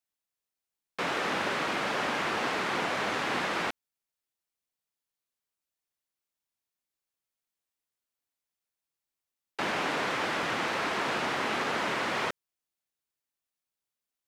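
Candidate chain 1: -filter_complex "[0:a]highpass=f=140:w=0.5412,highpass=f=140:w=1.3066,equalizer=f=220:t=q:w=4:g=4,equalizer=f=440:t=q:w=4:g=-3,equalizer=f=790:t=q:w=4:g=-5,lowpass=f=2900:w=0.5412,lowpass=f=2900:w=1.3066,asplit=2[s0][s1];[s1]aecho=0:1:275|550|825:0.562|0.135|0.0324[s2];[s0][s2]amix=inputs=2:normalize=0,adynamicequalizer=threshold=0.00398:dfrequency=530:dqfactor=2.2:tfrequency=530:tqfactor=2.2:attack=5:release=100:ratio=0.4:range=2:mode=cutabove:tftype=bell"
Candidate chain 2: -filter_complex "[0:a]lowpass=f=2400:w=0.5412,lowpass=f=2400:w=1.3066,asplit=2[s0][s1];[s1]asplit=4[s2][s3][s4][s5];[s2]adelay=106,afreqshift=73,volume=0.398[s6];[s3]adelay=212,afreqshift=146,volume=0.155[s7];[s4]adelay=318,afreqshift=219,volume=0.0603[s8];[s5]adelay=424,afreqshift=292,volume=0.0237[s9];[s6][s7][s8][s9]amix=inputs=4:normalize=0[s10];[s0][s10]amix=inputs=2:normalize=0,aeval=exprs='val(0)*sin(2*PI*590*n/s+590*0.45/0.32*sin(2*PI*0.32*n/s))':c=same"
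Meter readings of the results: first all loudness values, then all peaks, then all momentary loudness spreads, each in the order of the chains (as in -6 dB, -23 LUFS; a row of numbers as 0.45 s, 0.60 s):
-30.5 LUFS, -33.0 LUFS; -18.0 dBFS, -19.0 dBFS; 9 LU, 6 LU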